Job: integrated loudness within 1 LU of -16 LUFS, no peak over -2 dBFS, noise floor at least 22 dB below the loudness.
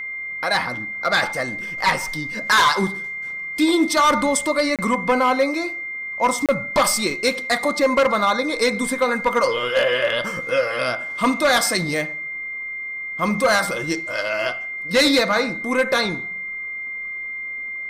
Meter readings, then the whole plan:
dropouts 2; longest dropout 27 ms; steady tone 2100 Hz; tone level -27 dBFS; loudness -20.5 LUFS; peak -8.5 dBFS; loudness target -16.0 LUFS
-> interpolate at 4.76/6.46, 27 ms; notch 2100 Hz, Q 30; gain +4.5 dB

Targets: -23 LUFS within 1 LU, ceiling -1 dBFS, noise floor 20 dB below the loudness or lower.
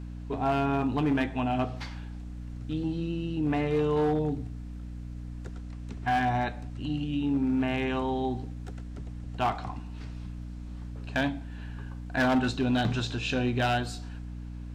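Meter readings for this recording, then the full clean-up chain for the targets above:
clipped 1.2%; flat tops at -20.5 dBFS; hum 60 Hz; harmonics up to 300 Hz; hum level -36 dBFS; loudness -29.5 LUFS; peak -20.5 dBFS; loudness target -23.0 LUFS
-> clip repair -20.5 dBFS; de-hum 60 Hz, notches 5; gain +6.5 dB

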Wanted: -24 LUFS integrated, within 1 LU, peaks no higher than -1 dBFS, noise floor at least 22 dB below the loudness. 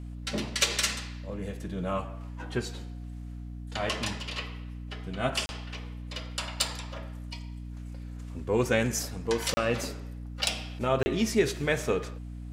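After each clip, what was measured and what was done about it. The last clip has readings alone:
dropouts 3; longest dropout 30 ms; hum 60 Hz; harmonics up to 300 Hz; hum level -37 dBFS; loudness -31.0 LUFS; peak -9.0 dBFS; loudness target -24.0 LUFS
-> interpolate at 5.46/9.54/11.03, 30 ms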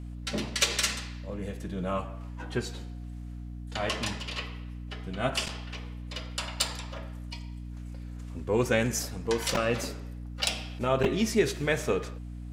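dropouts 0; hum 60 Hz; harmonics up to 300 Hz; hum level -37 dBFS
-> notches 60/120/180/240/300 Hz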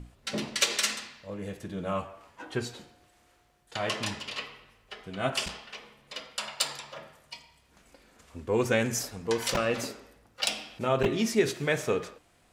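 hum none; loudness -30.5 LUFS; peak -9.0 dBFS; loudness target -24.0 LUFS
-> gain +6.5 dB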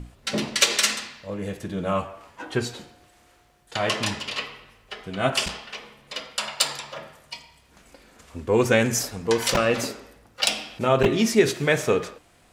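loudness -24.0 LUFS; peak -2.5 dBFS; noise floor -58 dBFS

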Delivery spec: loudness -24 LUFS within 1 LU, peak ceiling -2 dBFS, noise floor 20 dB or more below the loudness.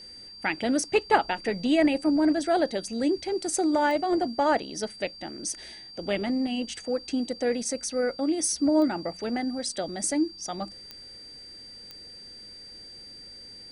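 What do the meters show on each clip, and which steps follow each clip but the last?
clicks 4; steady tone 4700 Hz; tone level -43 dBFS; loudness -27.0 LUFS; peak -8.0 dBFS; loudness target -24.0 LUFS
-> de-click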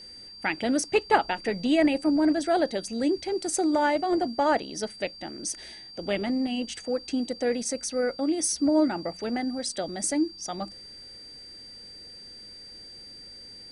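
clicks 0; steady tone 4700 Hz; tone level -43 dBFS
-> notch 4700 Hz, Q 30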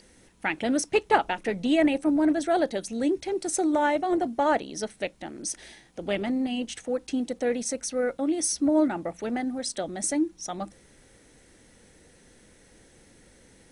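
steady tone none; loudness -27.0 LUFS; peak -8.0 dBFS; loudness target -24.0 LUFS
-> gain +3 dB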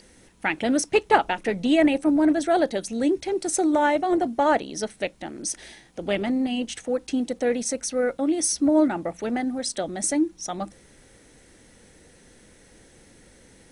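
loudness -24.0 LUFS; peak -5.0 dBFS; noise floor -54 dBFS

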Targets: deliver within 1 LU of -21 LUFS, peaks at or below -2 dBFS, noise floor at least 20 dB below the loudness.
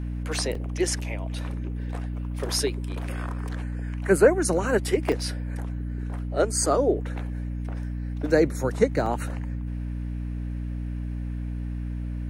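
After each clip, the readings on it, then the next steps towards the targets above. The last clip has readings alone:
dropouts 3; longest dropout 3.4 ms; hum 60 Hz; harmonics up to 300 Hz; hum level -28 dBFS; loudness -27.5 LUFS; peak -5.5 dBFS; loudness target -21.0 LUFS
-> interpolate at 0.55/5.12/9.06, 3.4 ms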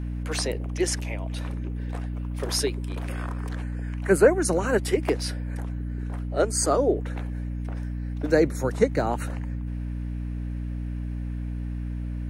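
dropouts 0; hum 60 Hz; harmonics up to 300 Hz; hum level -28 dBFS
-> notches 60/120/180/240/300 Hz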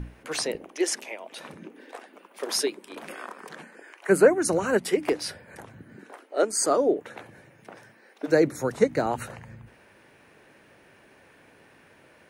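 hum none; loudness -25.0 LUFS; peak -6.5 dBFS; loudness target -21.0 LUFS
-> gain +4 dB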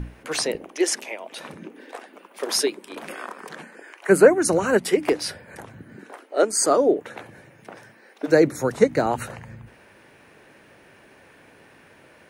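loudness -21.5 LUFS; peak -2.5 dBFS; noise floor -53 dBFS

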